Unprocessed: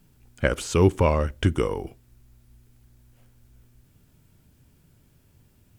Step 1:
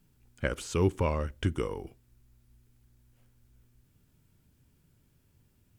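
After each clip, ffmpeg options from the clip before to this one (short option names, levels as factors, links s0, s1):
-af "equalizer=f=670:w=2.6:g=-3,volume=0.422"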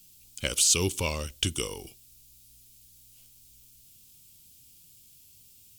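-af "aexciter=amount=12.6:drive=4:freq=2600,volume=0.708"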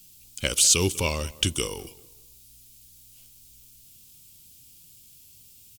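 -filter_complex "[0:a]asplit=2[s0][s1];[s1]adelay=195,lowpass=f=2300:p=1,volume=0.106,asplit=2[s2][s3];[s3]adelay=195,lowpass=f=2300:p=1,volume=0.33,asplit=2[s4][s5];[s5]adelay=195,lowpass=f=2300:p=1,volume=0.33[s6];[s0][s2][s4][s6]amix=inputs=4:normalize=0,volume=1.5"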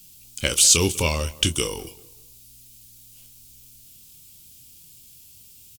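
-filter_complex "[0:a]asplit=2[s0][s1];[s1]adelay=25,volume=0.316[s2];[s0][s2]amix=inputs=2:normalize=0,volume=1.41"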